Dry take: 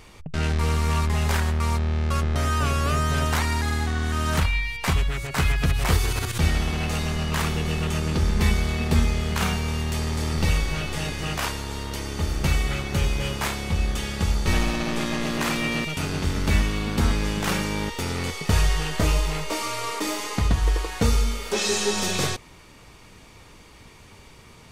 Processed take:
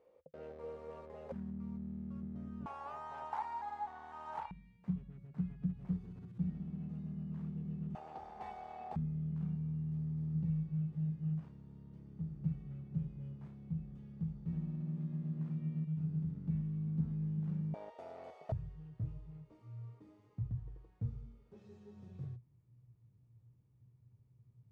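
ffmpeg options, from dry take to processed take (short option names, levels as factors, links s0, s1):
-af "asetnsamples=n=441:p=0,asendcmd='1.32 bandpass f 200;2.66 bandpass f 860;4.51 bandpass f 180;7.95 bandpass f 770;8.96 bandpass f 160;17.74 bandpass f 660;18.52 bandpass f 120',bandpass=f=520:t=q:w=14:csg=0"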